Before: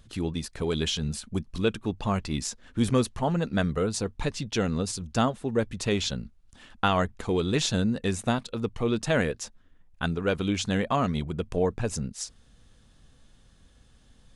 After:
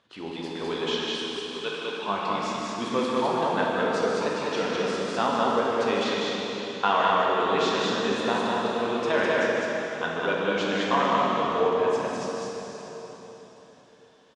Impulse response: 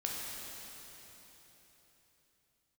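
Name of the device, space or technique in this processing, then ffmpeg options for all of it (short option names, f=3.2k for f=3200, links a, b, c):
station announcement: -filter_complex "[0:a]asettb=1/sr,asplit=3[a][b][c];[a]atrim=end=0.844[d];[b]atrim=start=0.84:end=2.08,asetpts=PTS-STARTPTS,afade=t=in:d=0.004:c=qsin,afade=t=out:st=1.236:d=0.004:c=qsin,highpass=f=960:p=1[e];[c]atrim=start=2.076[f];[d][e]acrossfade=d=0.004:c1=hsin:c2=qsin[g];[g][f]acrossfade=d=0.004:c1=qsin:c2=hsin,highpass=380,lowpass=3.6k,equalizer=f=1k:t=o:w=0.31:g=7,aecho=1:1:151.6|204.1:0.355|0.794[h];[1:a]atrim=start_sample=2205[i];[h][i]afir=irnorm=-1:irlink=0"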